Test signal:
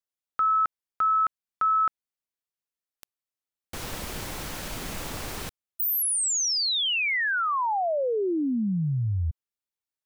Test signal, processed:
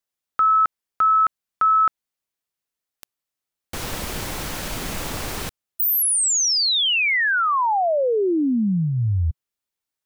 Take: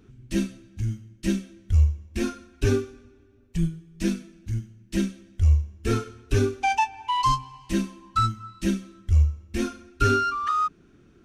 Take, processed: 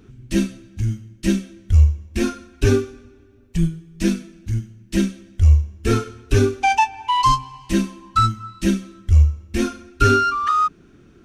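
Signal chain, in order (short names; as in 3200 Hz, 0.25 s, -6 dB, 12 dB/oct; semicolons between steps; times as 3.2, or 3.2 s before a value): dynamic EQ 140 Hz, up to -3 dB, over -42 dBFS, Q 5.8; gain +6 dB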